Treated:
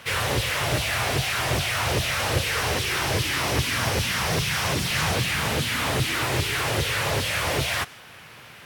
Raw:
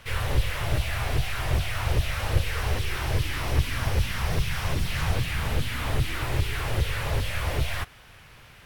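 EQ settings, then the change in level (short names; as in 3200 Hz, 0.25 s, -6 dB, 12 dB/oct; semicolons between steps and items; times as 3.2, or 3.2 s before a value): HPF 150 Hz 12 dB/oct; dynamic EQ 6500 Hz, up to +5 dB, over -51 dBFS, Q 0.82; +6.5 dB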